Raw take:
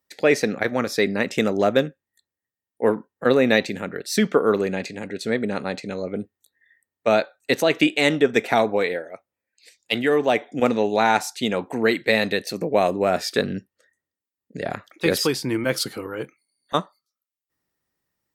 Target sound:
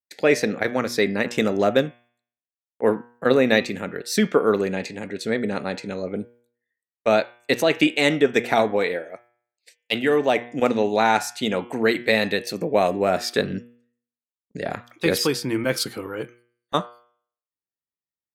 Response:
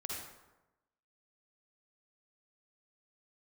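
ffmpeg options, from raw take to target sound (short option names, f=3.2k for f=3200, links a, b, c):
-af "agate=range=-22dB:threshold=-50dB:ratio=16:detection=peak,bandreject=f=119.7:t=h:w=4,bandreject=f=239.4:t=h:w=4,bandreject=f=359.1:t=h:w=4,bandreject=f=478.8:t=h:w=4,bandreject=f=598.5:t=h:w=4,bandreject=f=718.2:t=h:w=4,bandreject=f=837.9:t=h:w=4,bandreject=f=957.6:t=h:w=4,bandreject=f=1.0773k:t=h:w=4,bandreject=f=1.197k:t=h:w=4,bandreject=f=1.3167k:t=h:w=4,bandreject=f=1.4364k:t=h:w=4,bandreject=f=1.5561k:t=h:w=4,bandreject=f=1.6758k:t=h:w=4,bandreject=f=1.7955k:t=h:w=4,bandreject=f=1.9152k:t=h:w=4,bandreject=f=2.0349k:t=h:w=4,bandreject=f=2.1546k:t=h:w=4,bandreject=f=2.2743k:t=h:w=4,bandreject=f=2.394k:t=h:w=4,bandreject=f=2.5137k:t=h:w=4,bandreject=f=2.6334k:t=h:w=4,bandreject=f=2.7531k:t=h:w=4,bandreject=f=2.8728k:t=h:w=4,bandreject=f=2.9925k:t=h:w=4,bandreject=f=3.1122k:t=h:w=4,bandreject=f=3.2319k:t=h:w=4,bandreject=f=3.3516k:t=h:w=4,bandreject=f=3.4713k:t=h:w=4"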